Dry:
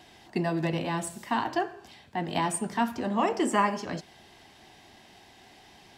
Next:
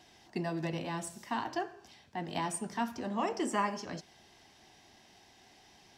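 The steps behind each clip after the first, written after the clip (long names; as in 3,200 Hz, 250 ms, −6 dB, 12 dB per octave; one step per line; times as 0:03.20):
parametric band 5,700 Hz +7 dB 0.45 octaves
level −7 dB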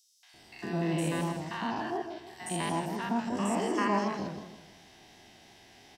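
spectrum averaged block by block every 100 ms
three-band delay without the direct sound highs, mids, lows 230/340 ms, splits 1,000/5,600 Hz
feedback echo with a swinging delay time 160 ms, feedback 37%, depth 140 cents, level −8.5 dB
level +6.5 dB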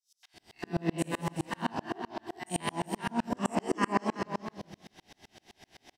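on a send: single-tap delay 375 ms −8 dB
on the sum: tremolo with a ramp in dB swelling 7.8 Hz, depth 36 dB
level +7 dB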